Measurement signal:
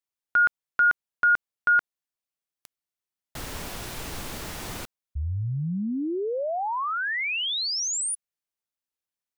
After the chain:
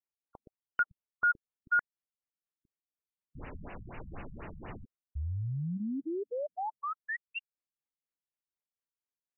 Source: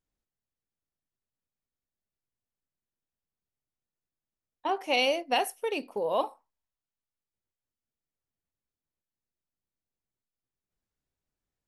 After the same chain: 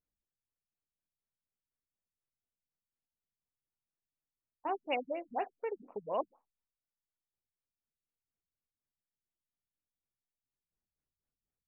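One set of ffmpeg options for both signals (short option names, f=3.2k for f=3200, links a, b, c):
-af "afftfilt=real='re*lt(b*sr/1024,200*pow(3000/200,0.5+0.5*sin(2*PI*4.1*pts/sr)))':imag='im*lt(b*sr/1024,200*pow(3000/200,0.5+0.5*sin(2*PI*4.1*pts/sr)))':win_size=1024:overlap=0.75,volume=-6dB"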